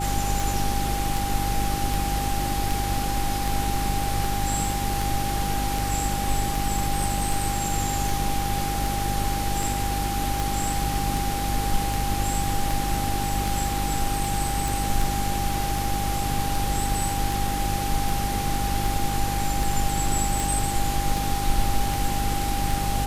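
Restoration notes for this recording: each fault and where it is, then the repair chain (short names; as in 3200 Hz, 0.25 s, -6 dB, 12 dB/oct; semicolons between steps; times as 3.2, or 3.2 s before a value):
hum 50 Hz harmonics 7 -29 dBFS
tick 78 rpm
tone 800 Hz -28 dBFS
14.68 pop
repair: de-click; de-hum 50 Hz, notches 7; notch 800 Hz, Q 30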